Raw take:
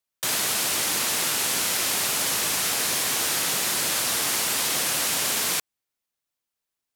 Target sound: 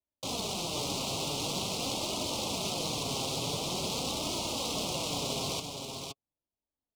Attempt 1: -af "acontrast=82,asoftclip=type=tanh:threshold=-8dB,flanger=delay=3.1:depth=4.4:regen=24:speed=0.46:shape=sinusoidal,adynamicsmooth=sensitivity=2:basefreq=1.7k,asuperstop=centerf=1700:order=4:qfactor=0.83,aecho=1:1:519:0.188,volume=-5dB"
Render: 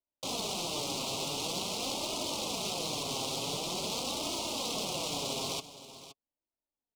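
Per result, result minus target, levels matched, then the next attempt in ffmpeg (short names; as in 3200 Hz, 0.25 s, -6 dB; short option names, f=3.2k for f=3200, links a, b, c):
echo-to-direct -9 dB; 125 Hz band -5.0 dB
-af "acontrast=82,asoftclip=type=tanh:threshold=-8dB,flanger=delay=3.1:depth=4.4:regen=24:speed=0.46:shape=sinusoidal,adynamicsmooth=sensitivity=2:basefreq=1.7k,asuperstop=centerf=1700:order=4:qfactor=0.83,aecho=1:1:519:0.531,volume=-5dB"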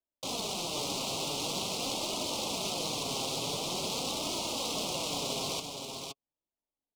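125 Hz band -4.5 dB
-af "acontrast=82,asoftclip=type=tanh:threshold=-8dB,flanger=delay=3.1:depth=4.4:regen=24:speed=0.46:shape=sinusoidal,adynamicsmooth=sensitivity=2:basefreq=1.7k,asuperstop=centerf=1700:order=4:qfactor=0.83,equalizer=f=80:w=0.68:g=8,aecho=1:1:519:0.531,volume=-5dB"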